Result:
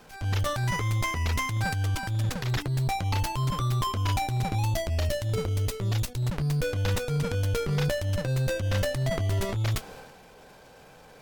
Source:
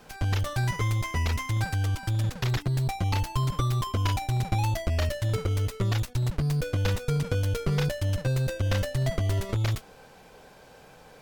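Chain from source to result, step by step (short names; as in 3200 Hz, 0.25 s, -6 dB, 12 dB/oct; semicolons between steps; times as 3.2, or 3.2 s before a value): 4.55–6.24 bell 1400 Hz -5.5 dB 1.7 oct; transient shaper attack -8 dB, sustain +7 dB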